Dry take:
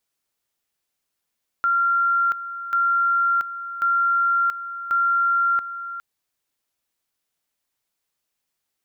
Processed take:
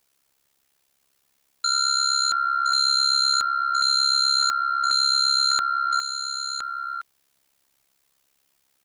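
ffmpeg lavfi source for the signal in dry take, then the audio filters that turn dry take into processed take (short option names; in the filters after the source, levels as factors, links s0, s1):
-f lavfi -i "aevalsrc='pow(10,(-16.5-12.5*gte(mod(t,1.09),0.68))/20)*sin(2*PI*1380*t)':d=4.36:s=44100"
-filter_complex "[0:a]aeval=exprs='0.158*sin(PI/2*3.16*val(0)/0.158)':c=same,tremolo=f=68:d=0.824,asplit=2[s0][s1];[s1]aecho=0:1:1015:0.422[s2];[s0][s2]amix=inputs=2:normalize=0"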